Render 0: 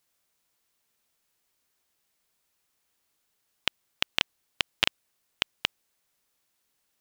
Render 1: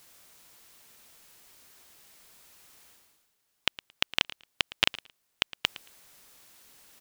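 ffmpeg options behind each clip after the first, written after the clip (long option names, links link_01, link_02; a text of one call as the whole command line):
ffmpeg -i in.wav -af "areverse,acompressor=mode=upward:threshold=-40dB:ratio=2.5,areverse,aecho=1:1:112|224:0.126|0.0214" out.wav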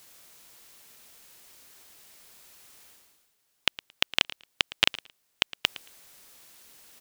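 ffmpeg -i in.wav -filter_complex "[0:a]tiltshelf=frequency=700:gain=-5,acrossover=split=640|4100[link_01][link_02][link_03];[link_01]acontrast=88[link_04];[link_04][link_02][link_03]amix=inputs=3:normalize=0,volume=-2dB" out.wav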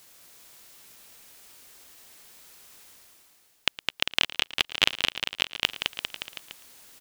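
ffmpeg -i in.wav -af "aecho=1:1:210|399|569.1|722.2|860:0.631|0.398|0.251|0.158|0.1" out.wav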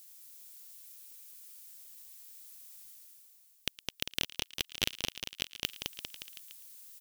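ffmpeg -i in.wav -af "aderivative,aeval=exprs='0.355*(cos(1*acos(clip(val(0)/0.355,-1,1)))-cos(1*PI/2))+0.0708*(cos(4*acos(clip(val(0)/0.355,-1,1)))-cos(4*PI/2))':channel_layout=same,volume=-3.5dB" out.wav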